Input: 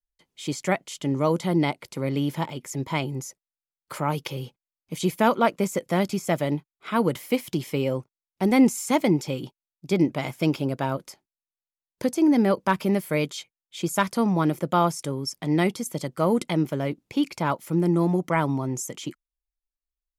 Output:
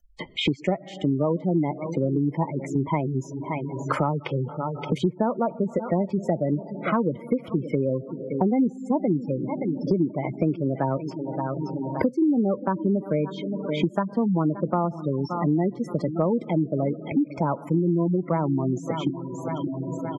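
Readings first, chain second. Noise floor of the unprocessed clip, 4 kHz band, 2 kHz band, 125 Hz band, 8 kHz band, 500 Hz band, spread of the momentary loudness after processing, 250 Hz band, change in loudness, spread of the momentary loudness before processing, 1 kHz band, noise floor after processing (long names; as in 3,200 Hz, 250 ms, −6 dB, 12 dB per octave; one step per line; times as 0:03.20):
below −85 dBFS, −3.0 dB, −6.5 dB, +1.5 dB, below −15 dB, +0.5 dB, 7 LU, +0.5 dB, −0.5 dB, 12 LU, −2.0 dB, −41 dBFS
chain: repeating echo 573 ms, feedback 29%, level −17 dB
comb and all-pass reverb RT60 4.5 s, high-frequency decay 0.45×, pre-delay 30 ms, DRR 18.5 dB
gate on every frequency bin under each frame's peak −15 dB strong
treble cut that deepens with the level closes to 930 Hz, closed at −21 dBFS
multiband upward and downward compressor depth 100%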